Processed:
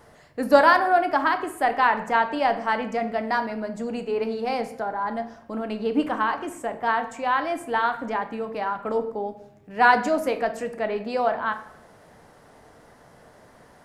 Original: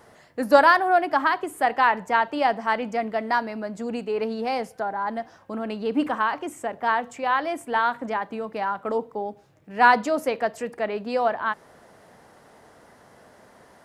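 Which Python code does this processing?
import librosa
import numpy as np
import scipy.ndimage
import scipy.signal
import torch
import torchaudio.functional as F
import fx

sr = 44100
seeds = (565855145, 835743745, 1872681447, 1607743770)

y = fx.low_shelf(x, sr, hz=84.0, db=10.0)
y = fx.room_shoebox(y, sr, seeds[0], volume_m3=180.0, walls='mixed', distance_m=0.39)
y = y * 10.0 ** (-1.0 / 20.0)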